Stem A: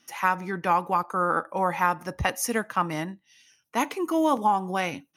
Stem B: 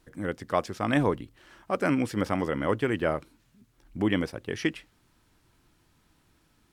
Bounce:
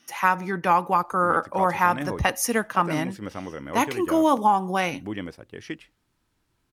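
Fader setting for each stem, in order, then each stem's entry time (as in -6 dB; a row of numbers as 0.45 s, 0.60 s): +3.0 dB, -7.0 dB; 0.00 s, 1.05 s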